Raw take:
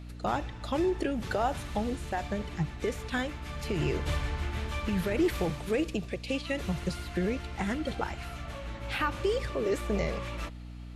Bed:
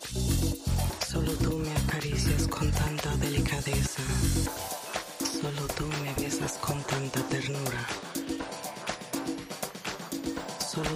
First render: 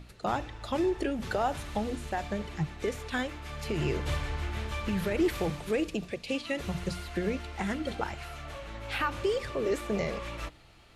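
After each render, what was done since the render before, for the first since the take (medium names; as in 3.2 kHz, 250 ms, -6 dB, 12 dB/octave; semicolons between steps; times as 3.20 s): hum notches 60/120/180/240/300 Hz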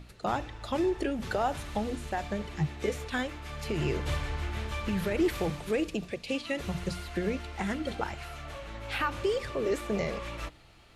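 2.56–3.05 s: doubling 14 ms -4.5 dB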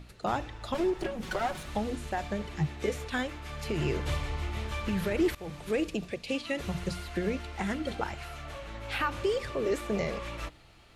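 0.74–1.68 s: comb filter that takes the minimum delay 5.4 ms; 4.12–4.65 s: band-stop 1.6 kHz, Q 5.7; 5.35–5.76 s: fade in, from -20 dB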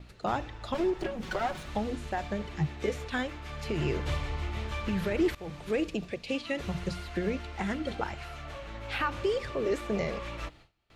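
gate with hold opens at -45 dBFS; peaking EQ 11 kHz -7.5 dB 1 oct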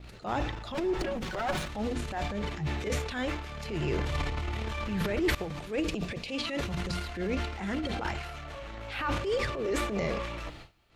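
transient shaper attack -9 dB, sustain +10 dB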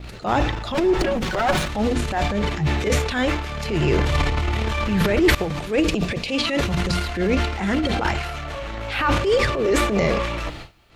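trim +11 dB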